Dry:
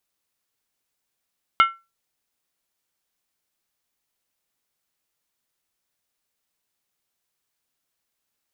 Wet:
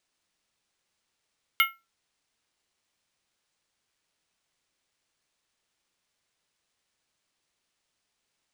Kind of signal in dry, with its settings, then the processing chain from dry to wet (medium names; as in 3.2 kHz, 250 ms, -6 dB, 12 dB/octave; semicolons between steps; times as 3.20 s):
skin hit, lowest mode 1.35 kHz, decay 0.25 s, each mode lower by 6 dB, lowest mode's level -8.5 dB
inverse Chebyshev high-pass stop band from 410 Hz, stop band 70 dB; careless resampling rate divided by 3×, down none, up hold